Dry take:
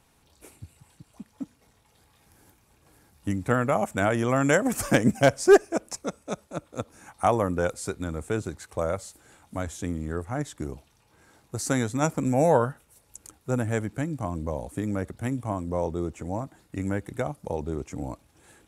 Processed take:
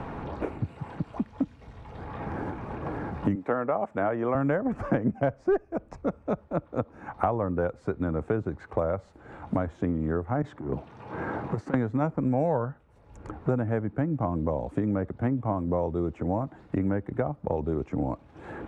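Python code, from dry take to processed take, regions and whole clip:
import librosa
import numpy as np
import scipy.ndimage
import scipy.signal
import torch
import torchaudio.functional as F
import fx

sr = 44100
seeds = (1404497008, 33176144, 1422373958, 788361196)

y = fx.chain(x, sr, fx.highpass(hz=330.0, slope=12),
    fx.notch(hz=1500.0, q=29.0), at=(3.35, 4.35))
y = fx.chain(y, sr, fx.clip_hard(threshold_db=-27.5),
    fx.highpass(hz=100.0, slope=12),
    fx.over_compress(threshold_db=-39.0, ratio=-0.5), at=(10.42, 11.74))
y = scipy.signal.sosfilt(scipy.signal.butter(2, 1300.0, 'lowpass', fs=sr, output='sos'), y)
y = fx.band_squash(y, sr, depth_pct=100)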